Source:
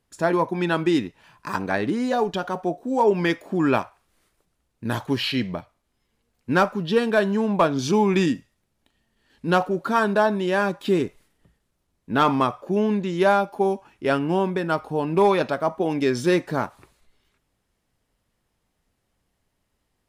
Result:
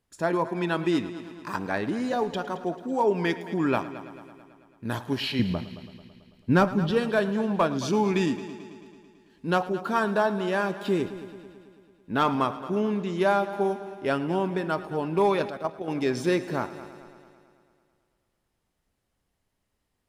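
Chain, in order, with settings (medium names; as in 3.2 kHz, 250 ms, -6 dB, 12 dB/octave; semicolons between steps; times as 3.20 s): 5.39–6.91 s: bass shelf 260 Hz +12 dB; multi-head delay 110 ms, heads first and second, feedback 59%, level -17.5 dB; 15.48–15.88 s: level held to a coarse grid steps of 10 dB; trim -4.5 dB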